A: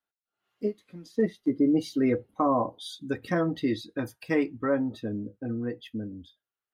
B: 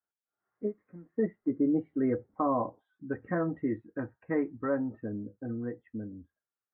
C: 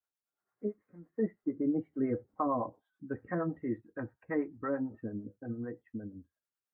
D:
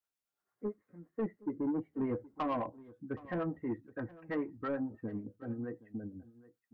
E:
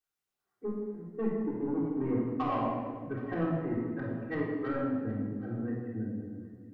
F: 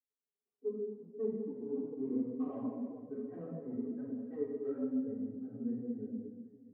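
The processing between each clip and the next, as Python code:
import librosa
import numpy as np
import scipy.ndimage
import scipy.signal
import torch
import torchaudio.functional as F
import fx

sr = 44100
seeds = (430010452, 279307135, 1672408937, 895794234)

y1 = scipy.signal.sosfilt(scipy.signal.butter(8, 1900.0, 'lowpass', fs=sr, output='sos'), x)
y1 = y1 * librosa.db_to_amplitude(-4.0)
y2 = fx.harmonic_tremolo(y1, sr, hz=8.9, depth_pct=70, crossover_hz=460.0)
y3 = 10.0 ** (-28.0 / 20.0) * np.tanh(y2 / 10.0 ** (-28.0 / 20.0))
y3 = y3 + 10.0 ** (-20.0 / 20.0) * np.pad(y3, (int(770 * sr / 1000.0), 0))[:len(y3)]
y4 = fx.room_shoebox(y3, sr, seeds[0], volume_m3=1800.0, walls='mixed', distance_m=3.6)
y4 = y4 * librosa.db_to_amplitude(-2.5)
y5 = fx.double_bandpass(y4, sr, hz=330.0, octaves=0.72)
y5 = fx.chorus_voices(y5, sr, voices=6, hz=0.69, base_ms=12, depth_ms=4.8, mix_pct=65)
y5 = y5 * librosa.db_to_amplitude(2.0)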